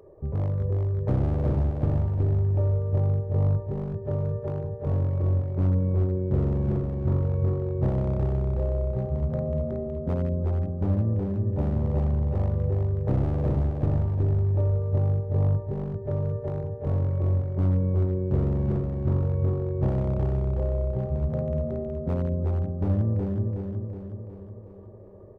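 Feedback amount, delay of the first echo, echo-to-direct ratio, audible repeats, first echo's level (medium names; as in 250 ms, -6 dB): 54%, 369 ms, -2.5 dB, 6, -4.0 dB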